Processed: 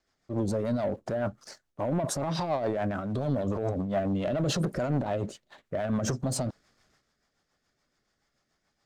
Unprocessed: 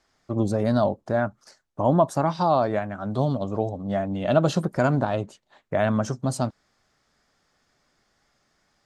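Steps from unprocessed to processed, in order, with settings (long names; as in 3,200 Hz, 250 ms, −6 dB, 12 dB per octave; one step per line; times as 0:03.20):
dynamic equaliser 530 Hz, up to +4 dB, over −34 dBFS, Q 1.1
transient designer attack −4 dB, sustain +8 dB
brickwall limiter −16 dBFS, peak gain reduction 11 dB
leveller curve on the samples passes 1
rotating-speaker cabinet horn 7 Hz
level −3.5 dB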